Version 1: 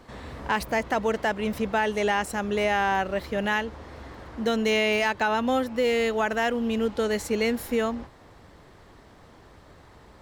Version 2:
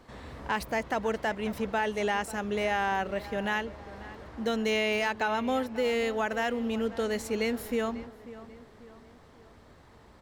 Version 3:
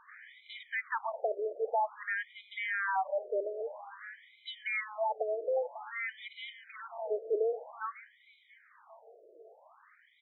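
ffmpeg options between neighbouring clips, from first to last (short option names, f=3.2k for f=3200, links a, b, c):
-filter_complex "[0:a]asplit=2[a][b];[b]adelay=542,lowpass=f=2.3k:p=1,volume=-16dB,asplit=2[c][d];[d]adelay=542,lowpass=f=2.3k:p=1,volume=0.48,asplit=2[e][f];[f]adelay=542,lowpass=f=2.3k:p=1,volume=0.48,asplit=2[g][h];[h]adelay=542,lowpass=f=2.3k:p=1,volume=0.48[i];[a][c][e][g][i]amix=inputs=5:normalize=0,volume=-4.5dB"
-af "asoftclip=type=tanh:threshold=-22dB,asuperstop=centerf=2700:order=12:qfactor=5.7,afftfilt=real='re*between(b*sr/1024,470*pow(2900/470,0.5+0.5*sin(2*PI*0.51*pts/sr))/1.41,470*pow(2900/470,0.5+0.5*sin(2*PI*0.51*pts/sr))*1.41)':imag='im*between(b*sr/1024,470*pow(2900/470,0.5+0.5*sin(2*PI*0.51*pts/sr))/1.41,470*pow(2900/470,0.5+0.5*sin(2*PI*0.51*pts/sr))*1.41)':win_size=1024:overlap=0.75,volume=3dB"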